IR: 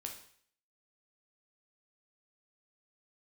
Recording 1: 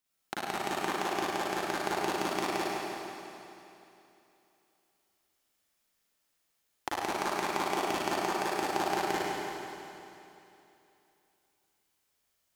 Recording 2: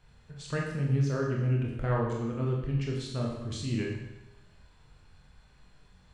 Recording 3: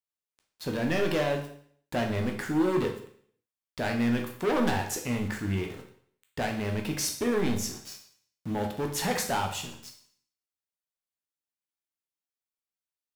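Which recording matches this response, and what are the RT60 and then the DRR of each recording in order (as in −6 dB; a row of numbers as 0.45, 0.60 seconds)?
3; 2.9, 0.95, 0.55 seconds; −9.5, −2.0, 2.0 decibels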